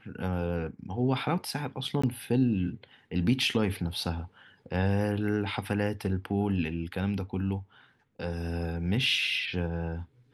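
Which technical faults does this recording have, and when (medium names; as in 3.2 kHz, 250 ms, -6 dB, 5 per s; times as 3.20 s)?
2.02–2.04 s: dropout 15 ms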